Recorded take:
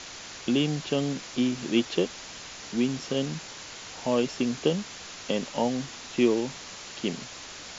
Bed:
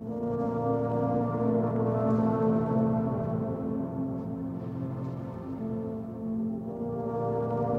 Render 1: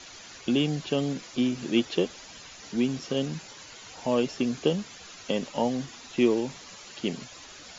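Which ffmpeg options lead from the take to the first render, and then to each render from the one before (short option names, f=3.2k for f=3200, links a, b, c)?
-af "afftdn=nr=10:nf=-43"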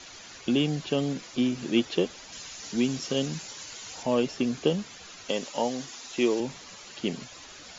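-filter_complex "[0:a]asettb=1/sr,asplit=3[a][b][c];[a]atrim=end=2.324[d];[b]atrim=start=2.32:end=4.03,asetpts=PTS-STARTPTS,afade=t=in:d=0.004:c=qsin,afade=t=out:st=1.706:d=0.004:c=qsin,highshelf=f=4.7k:g=10[e];[c]atrim=start=4.026[f];[d][e]acrossfade=d=0.004:c1=hsin:c2=qsin[g];[g][f]acrossfade=d=0.004:c1=qsin:c2=hsin,asettb=1/sr,asplit=3[h][i][j];[h]atrim=end=5.294[k];[i]atrim=start=5.29:end=6.4,asetpts=PTS-STARTPTS,afade=t=in:d=0.004:c=qsin,afade=t=out:st=1.106:d=0.004:c=qsin,bass=f=250:g=-9,treble=f=4k:g=6[l];[j]atrim=start=6.396[m];[k][l]acrossfade=d=0.004:c1=hsin:c2=qsin[n];[n][m]acrossfade=d=0.004:c1=qsin:c2=hsin"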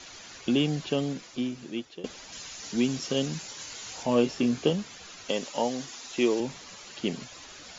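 -filter_complex "[0:a]asettb=1/sr,asplit=3[a][b][c];[a]atrim=end=3.564[d];[b]atrim=start=3.56:end=4.7,asetpts=PTS-STARTPTS,afade=t=in:d=0.004:c=qsin,afade=t=out:st=1.136:d=0.004:c=qsin,asplit=2[e][f];[f]adelay=25,volume=-7dB[g];[e][g]amix=inputs=2:normalize=0,atrim=end_sample=50274[h];[c]atrim=start=4.696[i];[d][h]acrossfade=d=0.004:c1=hsin:c2=qsin[j];[j][i]acrossfade=d=0.004:c1=qsin:c2=hsin,asplit=2[k][l];[k]atrim=end=2.04,asetpts=PTS-STARTPTS,afade=t=out:st=0.83:d=1.21:silence=0.105925[m];[l]atrim=start=2.04,asetpts=PTS-STARTPTS,afade=t=in:d=0.004:c=hsin:silence=0.105925[n];[m][n]concat=n=2:v=0:a=1"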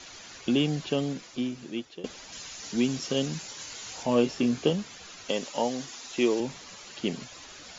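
-af anull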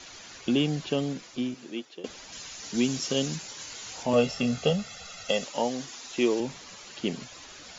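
-filter_complex "[0:a]asettb=1/sr,asplit=3[a][b][c];[a]atrim=end=1.544[d];[b]atrim=start=1.54:end=2.08,asetpts=PTS-STARTPTS,afade=t=in:d=0.004:c=qsin,afade=t=out:st=0.536:d=0.004:c=qsin,highpass=230[e];[c]atrim=start=2.076[f];[d][e]acrossfade=d=0.004:c1=hsin:c2=qsin[g];[g][f]acrossfade=d=0.004:c1=qsin:c2=hsin,asettb=1/sr,asplit=3[h][i][j];[h]atrim=end=2.744[k];[i]atrim=start=2.74:end=3.36,asetpts=PTS-STARTPTS,afade=t=in:d=0.004:c=qsin,afade=t=out:st=0.616:d=0.004:c=qsin,highshelf=f=5.1k:g=7.5[l];[j]atrim=start=3.356[m];[k][l]acrossfade=d=0.004:c1=hsin:c2=qsin[n];[n][m]acrossfade=d=0.004:c1=qsin:c2=hsin,asettb=1/sr,asplit=3[o][p][q];[o]atrim=end=4.134[r];[p]atrim=start=4.13:end=5.45,asetpts=PTS-STARTPTS,afade=t=in:d=0.004:c=qsin,afade=t=out:st=1.316:d=0.004:c=qsin,aecho=1:1:1.5:0.88,atrim=end_sample=58212[s];[q]atrim=start=5.446[t];[r][s]acrossfade=d=0.004:c1=hsin:c2=qsin[u];[u][t]acrossfade=d=0.004:c1=qsin:c2=hsin"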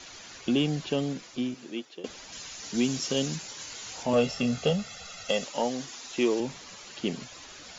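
-af "asoftclip=type=tanh:threshold=-13dB"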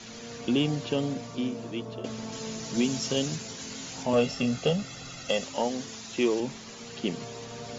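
-filter_complex "[1:a]volume=-12.5dB[a];[0:a][a]amix=inputs=2:normalize=0"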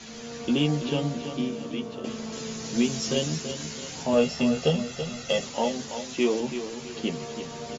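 -filter_complex "[0:a]asplit=2[a][b];[b]adelay=13,volume=-4.5dB[c];[a][c]amix=inputs=2:normalize=0,asplit=2[d][e];[e]aecho=0:1:331|662|993|1324|1655:0.335|0.141|0.0591|0.0248|0.0104[f];[d][f]amix=inputs=2:normalize=0"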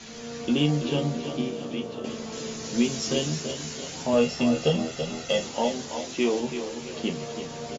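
-filter_complex "[0:a]asplit=2[a][b];[b]adelay=34,volume=-11dB[c];[a][c]amix=inputs=2:normalize=0,asplit=6[d][e][f][g][h][i];[e]adelay=334,afreqshift=82,volume=-15.5dB[j];[f]adelay=668,afreqshift=164,volume=-21.5dB[k];[g]adelay=1002,afreqshift=246,volume=-27.5dB[l];[h]adelay=1336,afreqshift=328,volume=-33.6dB[m];[i]adelay=1670,afreqshift=410,volume=-39.6dB[n];[d][j][k][l][m][n]amix=inputs=6:normalize=0"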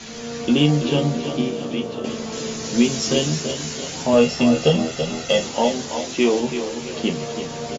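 -af "volume=6.5dB"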